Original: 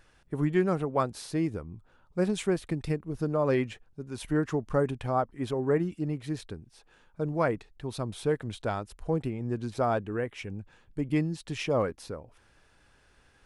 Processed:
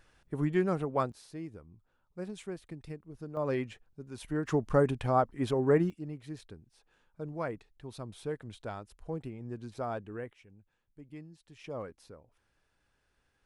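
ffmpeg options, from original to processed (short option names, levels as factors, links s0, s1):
-af "asetnsamples=n=441:p=0,asendcmd='1.12 volume volume -13dB;3.37 volume volume -6dB;4.47 volume volume 1dB;5.9 volume volume -9dB;10.33 volume volume -20dB;11.64 volume volume -13dB',volume=0.708"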